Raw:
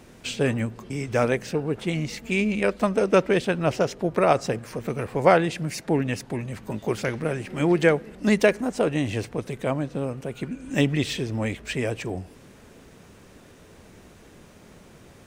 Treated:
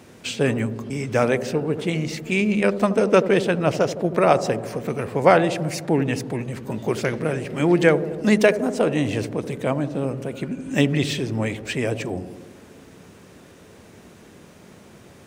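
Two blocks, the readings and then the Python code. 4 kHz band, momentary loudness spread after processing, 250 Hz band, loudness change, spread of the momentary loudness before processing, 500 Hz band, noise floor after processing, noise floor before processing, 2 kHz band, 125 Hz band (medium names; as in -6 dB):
+2.5 dB, 11 LU, +3.5 dB, +3.0 dB, 12 LU, +3.0 dB, -48 dBFS, -50 dBFS, +2.5 dB, +2.5 dB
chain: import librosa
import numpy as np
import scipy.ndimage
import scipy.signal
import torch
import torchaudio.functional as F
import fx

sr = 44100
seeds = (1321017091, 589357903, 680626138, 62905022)

p1 = scipy.signal.sosfilt(scipy.signal.butter(2, 82.0, 'highpass', fs=sr, output='sos'), x)
p2 = p1 + fx.echo_wet_lowpass(p1, sr, ms=80, feedback_pct=71, hz=640.0, wet_db=-10.0, dry=0)
y = p2 * 10.0 ** (2.5 / 20.0)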